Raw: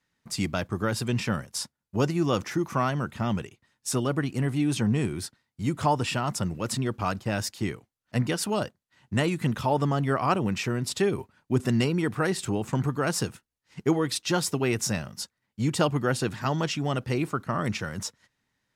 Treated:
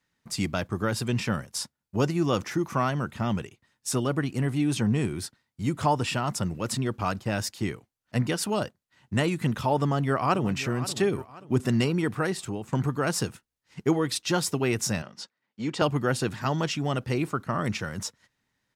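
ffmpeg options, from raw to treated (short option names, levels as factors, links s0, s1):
-filter_complex "[0:a]asplit=2[s0][s1];[s1]afade=t=in:st=9.81:d=0.01,afade=t=out:st=10.52:d=0.01,aecho=0:1:530|1060|1590|2120:0.188365|0.075346|0.0301384|0.0120554[s2];[s0][s2]amix=inputs=2:normalize=0,asettb=1/sr,asplit=3[s3][s4][s5];[s3]atrim=end=15.024[s6];[s4]atrim=start=15.02:end=15.82,asetpts=PTS-STARTPTS,afade=t=in:d=0.004:c=qsin,afade=t=out:st=0.796:d=0.004:c=qsin,highpass=240,lowpass=4700[s7];[s5]atrim=start=15.816[s8];[s6][s7]acrossfade=d=0.004:c1=hsin:c2=qsin[s9];[s9][s8]acrossfade=d=0.004:c1=qsin:c2=hsin,asplit=2[s10][s11];[s10]atrim=end=12.72,asetpts=PTS-STARTPTS,afade=t=out:st=12.09:d=0.63:silence=0.375837[s12];[s11]atrim=start=12.72,asetpts=PTS-STARTPTS,afade=t=in:d=0.004:c=hsin:silence=0.375837[s13];[s12][s13]concat=n=2:v=0:a=1"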